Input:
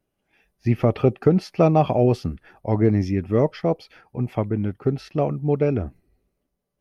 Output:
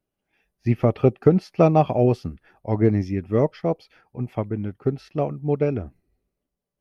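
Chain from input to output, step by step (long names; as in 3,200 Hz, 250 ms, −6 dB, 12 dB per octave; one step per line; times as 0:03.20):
expander for the loud parts 1.5 to 1, over −27 dBFS
level +2 dB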